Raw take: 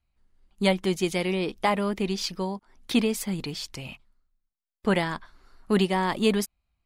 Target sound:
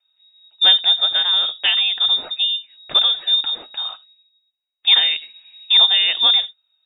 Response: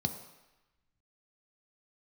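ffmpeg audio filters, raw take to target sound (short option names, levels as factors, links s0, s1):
-filter_complex "[0:a]asplit=2[s0][s1];[1:a]atrim=start_sample=2205,atrim=end_sample=3969[s2];[s1][s2]afir=irnorm=-1:irlink=0,volume=0.299[s3];[s0][s3]amix=inputs=2:normalize=0,lowpass=f=3200:t=q:w=0.5098,lowpass=f=3200:t=q:w=0.6013,lowpass=f=3200:t=q:w=0.9,lowpass=f=3200:t=q:w=2.563,afreqshift=-3800,volume=2.24"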